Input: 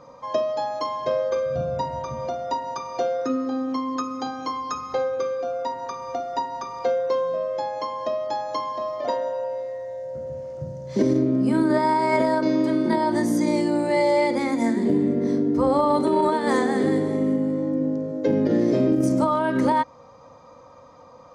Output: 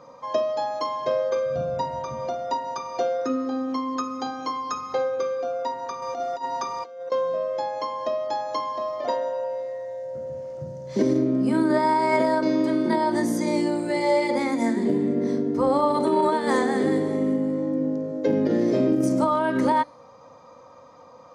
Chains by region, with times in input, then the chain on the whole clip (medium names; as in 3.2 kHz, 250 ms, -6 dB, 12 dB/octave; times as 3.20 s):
6.02–7.12 s: tone controls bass -2 dB, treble +3 dB + compressor with a negative ratio -29 dBFS, ratio -0.5
whole clip: high-pass 150 Hz 6 dB/octave; de-hum 292.4 Hz, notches 37